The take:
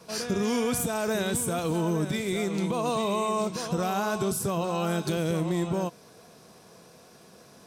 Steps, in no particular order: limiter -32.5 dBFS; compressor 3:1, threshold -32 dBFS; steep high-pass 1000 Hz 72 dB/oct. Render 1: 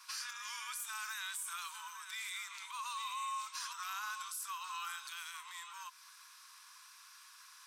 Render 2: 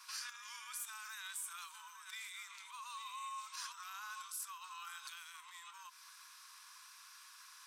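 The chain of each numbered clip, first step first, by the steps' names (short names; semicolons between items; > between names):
compressor > steep high-pass > limiter; compressor > limiter > steep high-pass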